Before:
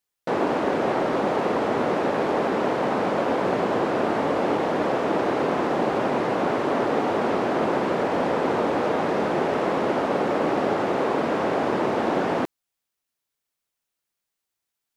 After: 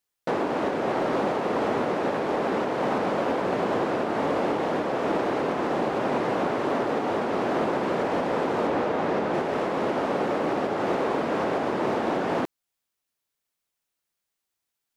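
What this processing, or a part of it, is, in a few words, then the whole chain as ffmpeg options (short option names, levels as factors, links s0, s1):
limiter into clipper: -filter_complex "[0:a]alimiter=limit=0.168:level=0:latency=1:release=288,asoftclip=type=hard:threshold=0.126,asettb=1/sr,asplit=3[s0][s1][s2];[s0]atrim=end=8.674[s3];[s1]atrim=start=8.67:end=9.34,asetpts=PTS-STARTPTS,afade=t=in:d=0.004:c=qsin,afade=t=out:st=0.666:d=0.004:c=qsin,highshelf=f=5700:g=-7[s4];[s2]atrim=start=9.336[s5];[s3][s4]acrossfade=d=0.004:c1=hsin:c2=qsin[s6];[s6][s5]acrossfade=d=0.004:c1=qsin:c2=hsin"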